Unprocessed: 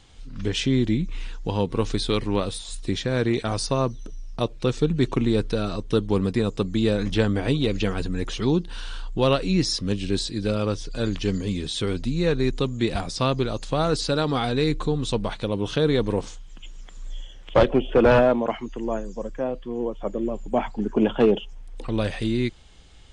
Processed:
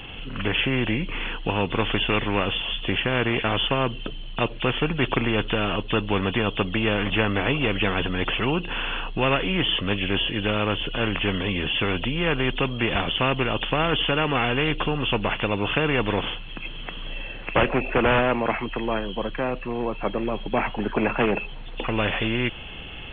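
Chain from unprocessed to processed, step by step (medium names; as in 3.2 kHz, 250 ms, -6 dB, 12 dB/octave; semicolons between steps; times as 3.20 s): knee-point frequency compression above 2.5 kHz 4:1; spectrum-flattening compressor 2:1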